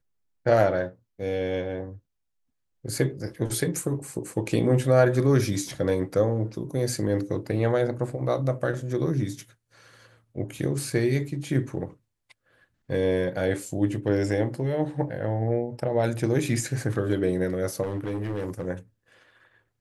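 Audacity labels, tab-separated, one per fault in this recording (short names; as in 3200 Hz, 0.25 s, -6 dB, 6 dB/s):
17.820000	18.660000	clipped -25.5 dBFS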